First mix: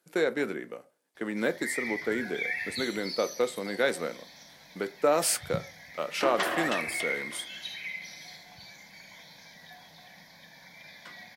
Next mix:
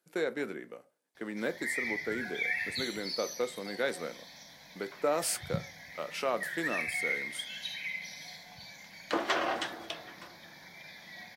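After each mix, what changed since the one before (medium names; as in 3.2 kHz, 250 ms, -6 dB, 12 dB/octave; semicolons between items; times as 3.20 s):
speech -5.5 dB; second sound: entry +2.90 s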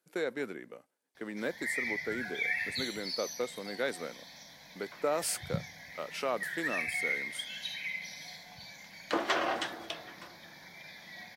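speech: send off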